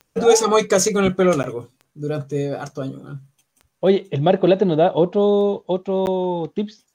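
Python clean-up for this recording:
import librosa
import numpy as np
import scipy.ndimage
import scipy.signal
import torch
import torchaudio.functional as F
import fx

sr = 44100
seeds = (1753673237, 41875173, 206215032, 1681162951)

y = fx.fix_declick_ar(x, sr, threshold=10.0)
y = fx.fix_interpolate(y, sr, at_s=(1.43, 6.06), length_ms=9.9)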